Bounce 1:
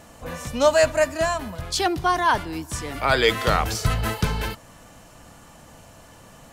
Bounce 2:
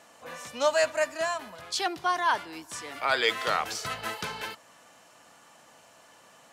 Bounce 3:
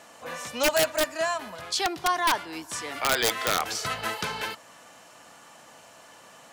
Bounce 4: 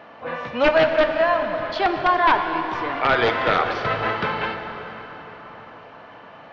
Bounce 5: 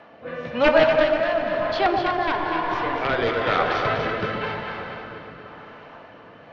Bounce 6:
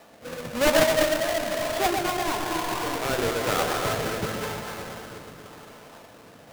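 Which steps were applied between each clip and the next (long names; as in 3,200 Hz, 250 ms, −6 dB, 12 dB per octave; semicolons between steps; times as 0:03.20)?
meter weighting curve A; level −5.5 dB
in parallel at −2 dB: downward compressor 16 to 1, threshold −33 dBFS, peak gain reduction 15 dB; on the sum: wrap-around overflow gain 14.5 dB
Gaussian smoothing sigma 3 samples; dense smooth reverb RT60 4.8 s, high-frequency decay 0.7×, DRR 5 dB; level +8 dB
rotating-speaker cabinet horn 1 Hz; delay that swaps between a low-pass and a high-pass 122 ms, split 930 Hz, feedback 70%, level −3 dB
each half-wave held at its own peak; level −7.5 dB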